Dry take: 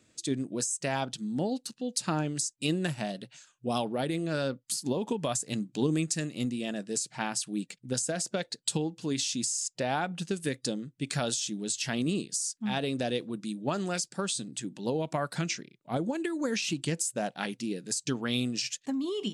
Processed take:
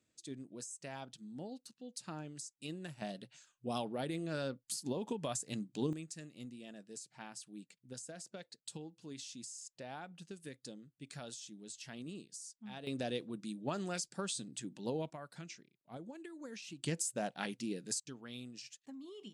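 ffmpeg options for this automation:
-af "asetnsamples=n=441:p=0,asendcmd='3.02 volume volume -8dB;5.93 volume volume -17dB;12.87 volume volume -7.5dB;15.1 volume volume -17.5dB;16.83 volume volume -6dB;18 volume volume -18dB',volume=-15.5dB"

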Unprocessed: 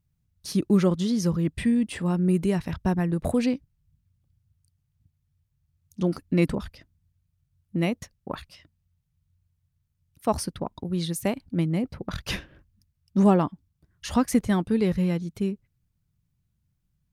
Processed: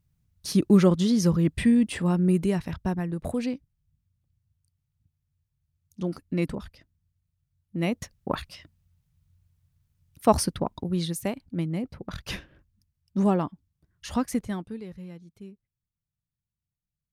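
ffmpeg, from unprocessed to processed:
-af "volume=12.5dB,afade=t=out:st=1.82:d=1.25:silence=0.421697,afade=t=in:st=7.76:d=0.4:silence=0.316228,afade=t=out:st=10.36:d=0.96:silence=0.354813,afade=t=out:st=14.2:d=0.64:silence=0.223872"

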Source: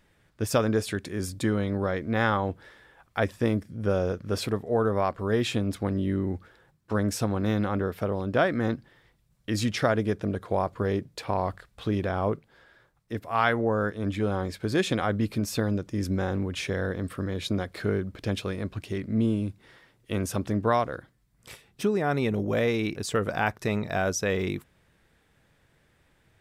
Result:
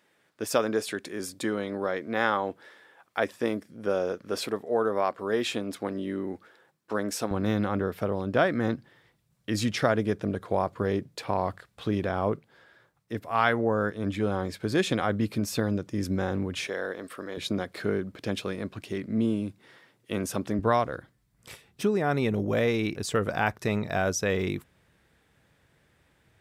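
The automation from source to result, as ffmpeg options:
-af "asetnsamples=n=441:p=0,asendcmd='7.31 highpass f 98;16.67 highpass f 400;17.37 highpass f 150;20.59 highpass f 49',highpass=280"

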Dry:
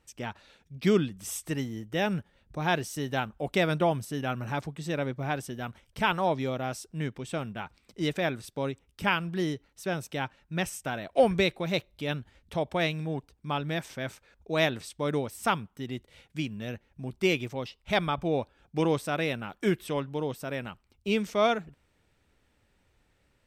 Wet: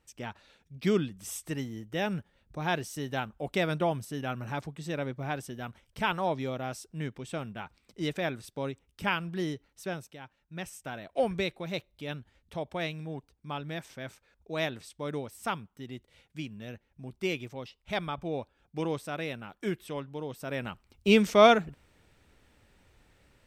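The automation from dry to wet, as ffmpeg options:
-af "volume=18.5dB,afade=t=out:st=9.84:d=0.34:silence=0.237137,afade=t=in:st=10.18:d=0.75:silence=0.334965,afade=t=in:st=20.29:d=0.81:silence=0.251189"

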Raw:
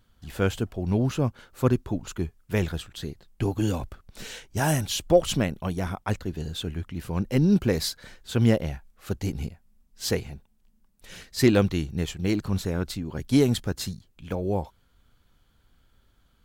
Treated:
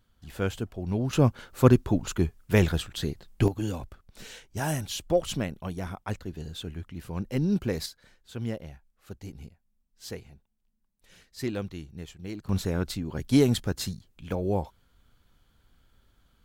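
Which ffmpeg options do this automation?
-af "asetnsamples=n=441:p=0,asendcmd='1.13 volume volume 4dB;3.48 volume volume -5.5dB;7.86 volume volume -12.5dB;12.49 volume volume -0.5dB',volume=-4.5dB"

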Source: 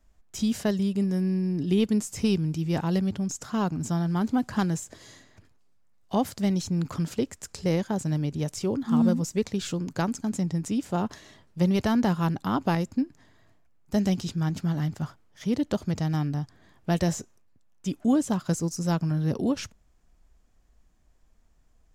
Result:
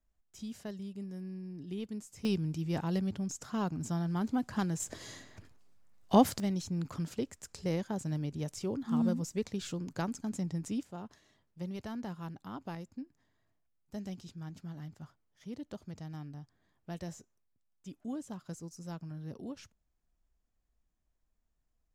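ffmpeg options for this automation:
-af "asetnsamples=n=441:p=0,asendcmd='2.25 volume volume -7dB;4.8 volume volume 2dB;6.4 volume volume -8dB;10.83 volume volume -17dB',volume=-16.5dB"

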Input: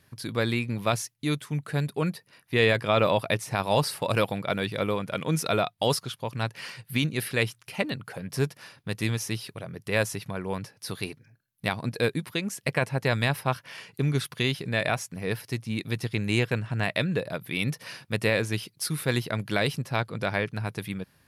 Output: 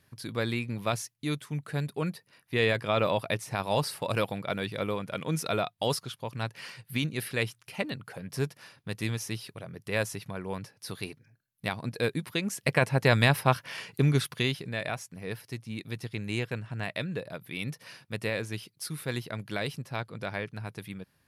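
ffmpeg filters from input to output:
-af "volume=3dB,afade=t=in:st=11.96:d=1.17:silence=0.446684,afade=t=out:st=13.93:d=0.82:silence=0.316228"

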